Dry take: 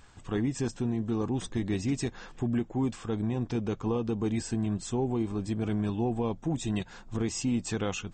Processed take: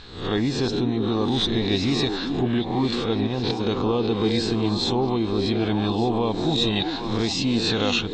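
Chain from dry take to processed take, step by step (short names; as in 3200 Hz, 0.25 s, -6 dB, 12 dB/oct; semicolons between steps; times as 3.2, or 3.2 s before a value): spectral swells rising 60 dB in 0.56 s; dynamic EQ 730 Hz, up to +5 dB, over -43 dBFS, Q 0.74; in parallel at +1 dB: limiter -26.5 dBFS, peak gain reduction 11.5 dB; 3.27–3.67 on the sum: negative-ratio compressor -26 dBFS, ratio -0.5; synth low-pass 4000 Hz, resonance Q 11; on a send: delay with a stepping band-pass 0.395 s, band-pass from 350 Hz, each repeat 1.4 oct, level -3 dB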